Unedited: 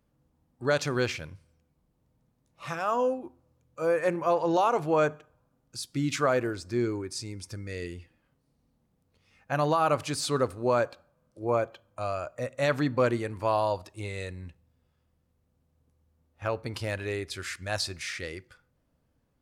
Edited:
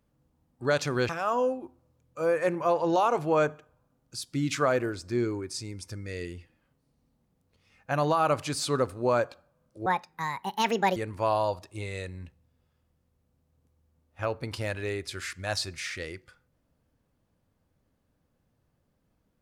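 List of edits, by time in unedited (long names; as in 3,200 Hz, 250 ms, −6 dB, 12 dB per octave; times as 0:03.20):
0:01.09–0:02.70: remove
0:11.47–0:13.19: play speed 156%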